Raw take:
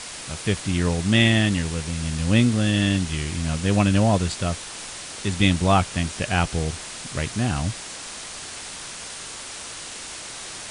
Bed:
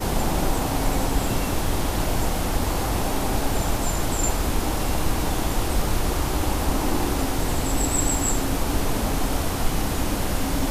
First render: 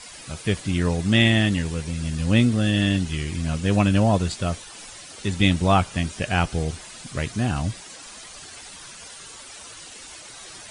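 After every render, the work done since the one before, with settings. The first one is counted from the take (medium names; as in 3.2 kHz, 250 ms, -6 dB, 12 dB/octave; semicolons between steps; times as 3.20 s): noise reduction 11 dB, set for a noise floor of -37 dBFS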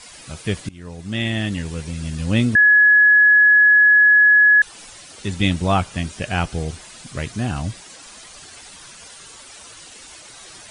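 0.69–1.82 s: fade in, from -23 dB; 2.55–4.62 s: bleep 1.69 kHz -8.5 dBFS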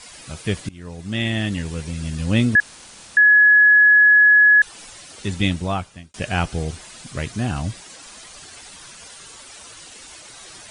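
2.60–3.17 s: room tone; 5.33–6.14 s: fade out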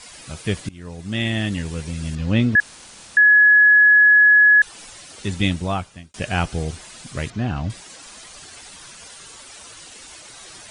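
2.15–2.58 s: distance through air 120 m; 7.30–7.70 s: distance through air 170 m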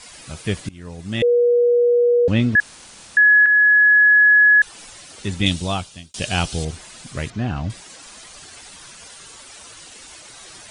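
1.22–2.28 s: bleep 481 Hz -12 dBFS; 3.46–4.47 s: fade in logarithmic; 5.46–6.65 s: resonant high shelf 2.6 kHz +7.5 dB, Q 1.5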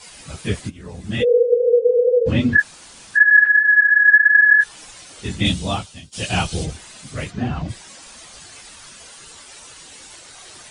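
phase randomisation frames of 50 ms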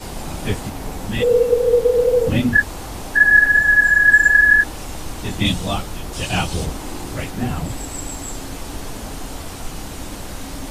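add bed -7 dB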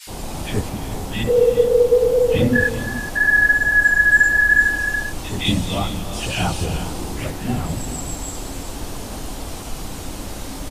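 bands offset in time highs, lows 70 ms, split 1.7 kHz; gated-style reverb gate 450 ms rising, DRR 9 dB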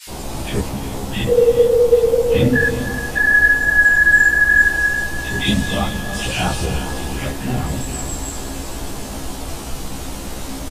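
doubling 15 ms -2 dB; two-band feedback delay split 1 kHz, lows 280 ms, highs 773 ms, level -15 dB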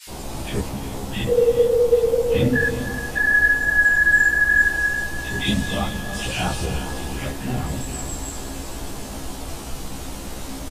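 trim -4 dB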